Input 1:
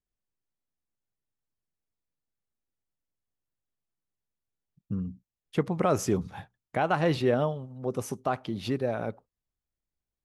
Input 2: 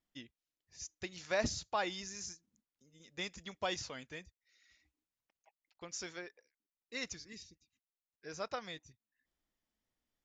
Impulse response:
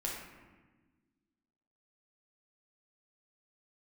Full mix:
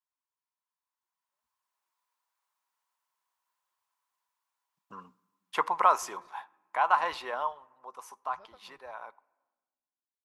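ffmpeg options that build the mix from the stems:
-filter_complex "[0:a]dynaudnorm=f=310:g=9:m=5.31,highpass=f=1000:t=q:w=7.2,volume=0.447,afade=t=out:st=5.6:d=0.43:silence=0.421697,afade=t=out:st=7.11:d=0.74:silence=0.421697,asplit=3[s0][s1][s2];[s1]volume=0.0668[s3];[1:a]lowpass=f=1000:p=1,asubboost=boost=6.5:cutoff=72,volume=0.224[s4];[s2]apad=whole_len=451603[s5];[s4][s5]sidechaingate=range=0.00224:threshold=0.00141:ratio=16:detection=peak[s6];[2:a]atrim=start_sample=2205[s7];[s3][s7]afir=irnorm=-1:irlink=0[s8];[s0][s6][s8]amix=inputs=3:normalize=0,bandreject=f=1200:w=28"

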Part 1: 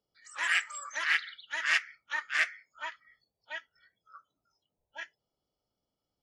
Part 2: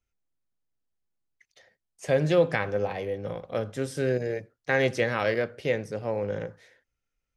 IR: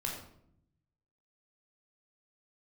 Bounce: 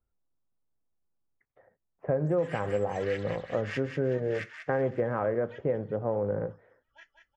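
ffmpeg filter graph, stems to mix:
-filter_complex "[0:a]adelay=2000,volume=0.251,asplit=2[s0][s1];[s1]volume=0.473[s2];[1:a]lowpass=f=1300:w=0.5412,lowpass=f=1300:w=1.3066,volume=1.33[s3];[s2]aecho=0:1:190|380|570|760|950|1140|1330|1520:1|0.56|0.314|0.176|0.0983|0.0551|0.0308|0.0173[s4];[s0][s3][s4]amix=inputs=3:normalize=0,highshelf=f=6700:g=-4.5,acompressor=threshold=0.0631:ratio=6"

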